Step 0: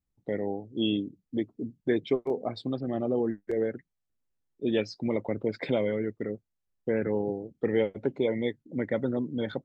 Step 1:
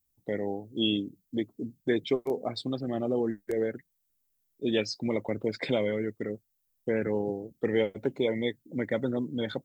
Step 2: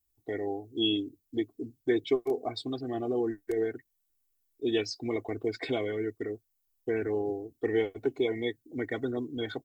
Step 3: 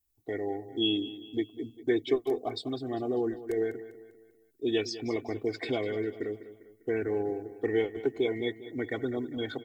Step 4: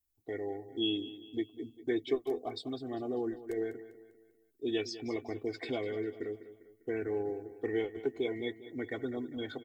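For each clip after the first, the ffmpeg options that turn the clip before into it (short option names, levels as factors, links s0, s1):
-af "aemphasis=mode=production:type=75fm"
-af "aecho=1:1:2.7:0.92,volume=0.631"
-af "aecho=1:1:199|398|597|796:0.188|0.081|0.0348|0.015"
-filter_complex "[0:a]asplit=2[s0][s1];[s1]adelay=12,volume=0.224[s2];[s0][s2]amix=inputs=2:normalize=0,volume=0.562"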